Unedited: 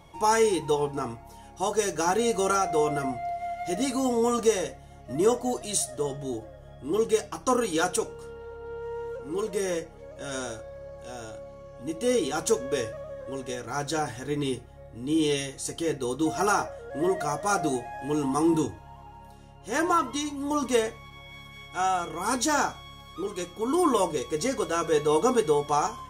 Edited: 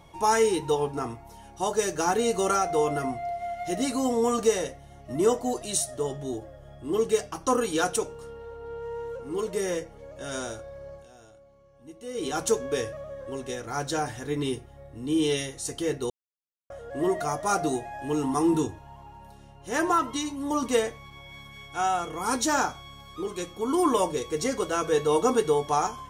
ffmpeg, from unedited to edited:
-filter_complex "[0:a]asplit=5[a][b][c][d][e];[a]atrim=end=11.08,asetpts=PTS-STARTPTS,afade=t=out:st=10.94:d=0.14:silence=0.223872[f];[b]atrim=start=11.08:end=12.14,asetpts=PTS-STARTPTS,volume=-13dB[g];[c]atrim=start=12.14:end=16.1,asetpts=PTS-STARTPTS,afade=t=in:d=0.14:silence=0.223872,afade=t=out:st=3.956:d=0.004:c=hsin[h];[d]atrim=start=16.1:end=16.7,asetpts=PTS-STARTPTS,volume=0[i];[e]atrim=start=16.7,asetpts=PTS-STARTPTS,afade=t=in:d=0.004:c=hsin[j];[f][g][h][i][j]concat=n=5:v=0:a=1"

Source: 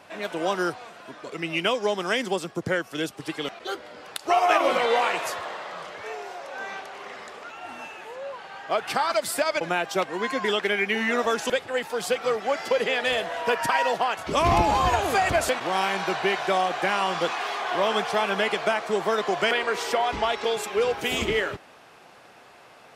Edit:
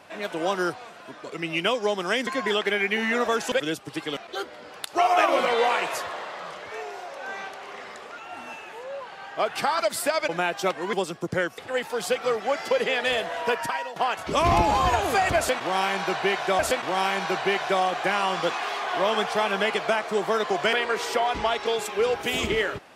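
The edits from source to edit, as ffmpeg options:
-filter_complex "[0:a]asplit=7[a][b][c][d][e][f][g];[a]atrim=end=2.272[h];[b]atrim=start=10.248:end=11.582[i];[c]atrim=start=2.918:end=10.252[j];[d]atrim=start=2.268:end=2.922[k];[e]atrim=start=11.578:end=13.96,asetpts=PTS-STARTPTS,afade=t=out:st=1.872:d=0.51:silence=0.141254[l];[f]atrim=start=13.96:end=16.592,asetpts=PTS-STARTPTS,afade=t=in:d=0.004:c=hsin:silence=0.141254[m];[g]atrim=start=15.368[n];[h][i]acrossfade=d=0.004:c1=hsin:c2=hsin[o];[o][j]acrossfade=d=0.004:c1=hsin:c2=hsin[p];[p][k]acrossfade=d=0.004:c1=hsin:c2=hsin[q];[l][m]concat=n=2:v=0:a=1[r];[q][r]acrossfade=d=0.004:c1=hsin:c2=hsin[s];[s][n]acrossfade=d=0.004:c1=hsin:c2=hsin"

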